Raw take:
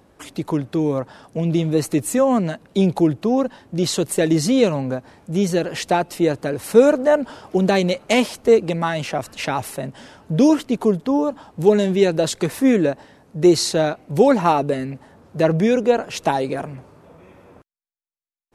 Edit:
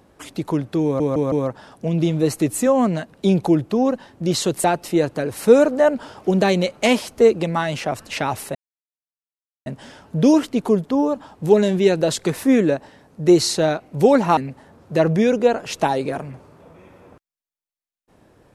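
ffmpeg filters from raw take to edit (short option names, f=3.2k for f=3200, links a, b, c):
-filter_complex "[0:a]asplit=7[a][b][c][d][e][f][g];[a]atrim=end=1.002[h];[b]atrim=start=0.838:end=1.002[i];[c]atrim=start=0.838:end=1.002[j];[d]atrim=start=0.838:end=4.162[k];[e]atrim=start=5.908:end=9.82,asetpts=PTS-STARTPTS,afade=t=out:st=3.908:d=0.004:c=hsin,apad=pad_dur=1.11[l];[f]atrim=start=9.82:end=14.532,asetpts=PTS-STARTPTS,afade=t=in:d=0.004:c=hsin[m];[g]atrim=start=14.808[n];[h][i]acrossfade=d=0.004:c1=hsin:c2=hsin[o];[o][j]acrossfade=d=0.004:c1=hsin:c2=hsin[p];[p][k]acrossfade=d=0.004:c1=hsin:c2=hsin[q];[l][m]concat=n=2:v=0:a=1[r];[q][r]acrossfade=d=0.004:c1=hsin:c2=hsin[s];[s][n]acrossfade=d=0.004:c1=hsin:c2=hsin"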